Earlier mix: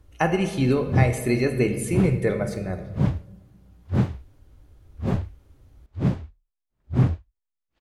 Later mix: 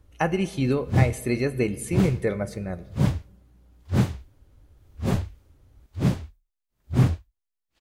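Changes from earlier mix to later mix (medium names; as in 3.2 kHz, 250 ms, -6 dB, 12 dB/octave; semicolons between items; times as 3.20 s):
speech: send -10.5 dB; background: remove low-pass 1.7 kHz 6 dB/octave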